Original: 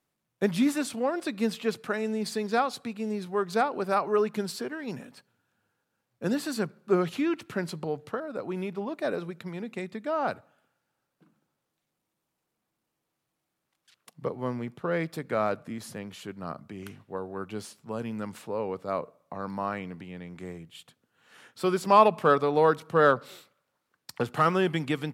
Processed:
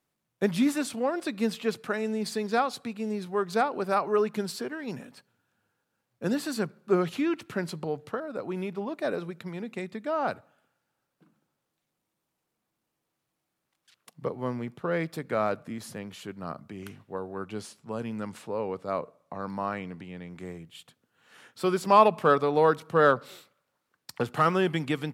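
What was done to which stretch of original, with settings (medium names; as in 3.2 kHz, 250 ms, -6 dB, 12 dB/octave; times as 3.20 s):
17.36–20.31 s: low-pass 12 kHz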